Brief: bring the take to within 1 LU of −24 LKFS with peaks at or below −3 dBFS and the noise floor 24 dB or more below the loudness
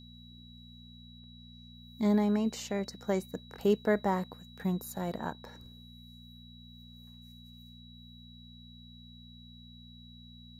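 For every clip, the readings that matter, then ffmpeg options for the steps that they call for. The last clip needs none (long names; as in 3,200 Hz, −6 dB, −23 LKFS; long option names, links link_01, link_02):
mains hum 60 Hz; hum harmonics up to 240 Hz; level of the hum −50 dBFS; interfering tone 3,900 Hz; level of the tone −55 dBFS; integrated loudness −32.0 LKFS; sample peak −16.0 dBFS; target loudness −24.0 LKFS
→ -af "bandreject=frequency=60:width_type=h:width=4,bandreject=frequency=120:width_type=h:width=4,bandreject=frequency=180:width_type=h:width=4,bandreject=frequency=240:width_type=h:width=4"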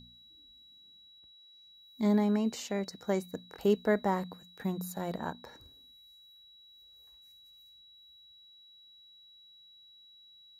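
mains hum none found; interfering tone 3,900 Hz; level of the tone −55 dBFS
→ -af "bandreject=frequency=3900:width=30"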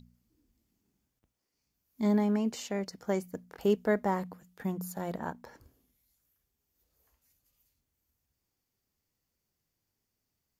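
interfering tone none found; integrated loudness −32.0 LKFS; sample peak −16.5 dBFS; target loudness −24.0 LKFS
→ -af "volume=8dB"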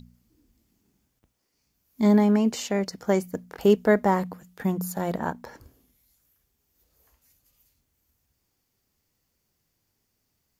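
integrated loudness −24.0 LKFS; sample peak −8.5 dBFS; background noise floor −76 dBFS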